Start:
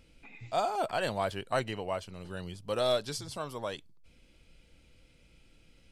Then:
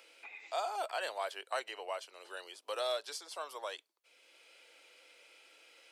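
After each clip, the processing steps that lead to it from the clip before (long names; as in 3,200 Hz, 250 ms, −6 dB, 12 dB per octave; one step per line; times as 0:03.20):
Bessel high-pass filter 690 Hz, order 8
multiband upward and downward compressor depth 40%
level −2.5 dB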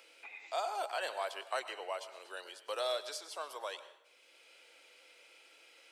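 dense smooth reverb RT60 0.81 s, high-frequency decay 0.75×, pre-delay 90 ms, DRR 12 dB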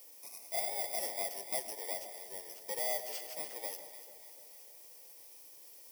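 samples in bit-reversed order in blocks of 32 samples
delay that swaps between a low-pass and a high-pass 147 ms, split 850 Hz, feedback 74%, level −9.5 dB
background noise violet −56 dBFS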